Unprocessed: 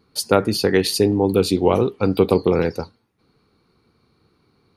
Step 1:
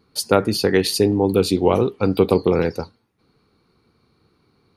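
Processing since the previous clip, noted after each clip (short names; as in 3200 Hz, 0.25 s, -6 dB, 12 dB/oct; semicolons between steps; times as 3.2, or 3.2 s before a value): nothing audible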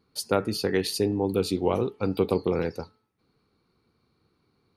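de-hum 433.2 Hz, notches 6; gain -8 dB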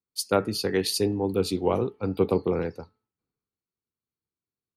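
three-band expander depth 70%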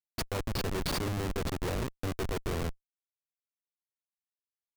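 Schmitt trigger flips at -25.5 dBFS; gain -3 dB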